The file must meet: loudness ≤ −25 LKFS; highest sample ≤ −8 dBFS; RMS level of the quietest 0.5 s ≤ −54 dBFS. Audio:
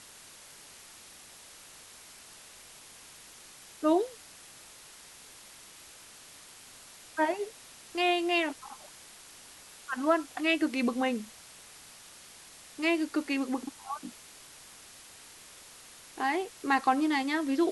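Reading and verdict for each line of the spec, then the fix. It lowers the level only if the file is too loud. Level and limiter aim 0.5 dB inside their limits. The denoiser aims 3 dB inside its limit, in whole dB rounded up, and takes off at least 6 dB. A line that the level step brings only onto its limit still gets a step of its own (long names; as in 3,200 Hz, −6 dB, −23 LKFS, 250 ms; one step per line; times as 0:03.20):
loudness −30.0 LKFS: in spec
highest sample −13.0 dBFS: in spec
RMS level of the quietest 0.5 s −52 dBFS: out of spec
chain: broadband denoise 6 dB, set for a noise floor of −52 dBFS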